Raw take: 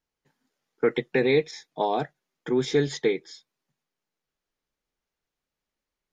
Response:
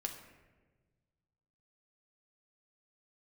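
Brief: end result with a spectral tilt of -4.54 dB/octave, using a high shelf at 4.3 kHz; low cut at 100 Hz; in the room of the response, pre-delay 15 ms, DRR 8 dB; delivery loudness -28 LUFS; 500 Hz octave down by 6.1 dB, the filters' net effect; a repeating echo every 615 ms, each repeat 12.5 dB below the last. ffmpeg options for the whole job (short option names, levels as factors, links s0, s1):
-filter_complex "[0:a]highpass=100,equalizer=f=500:t=o:g=-7.5,highshelf=f=4300:g=-6.5,aecho=1:1:615|1230|1845:0.237|0.0569|0.0137,asplit=2[s0][s1];[1:a]atrim=start_sample=2205,adelay=15[s2];[s1][s2]afir=irnorm=-1:irlink=0,volume=0.422[s3];[s0][s3]amix=inputs=2:normalize=0,volume=1.26"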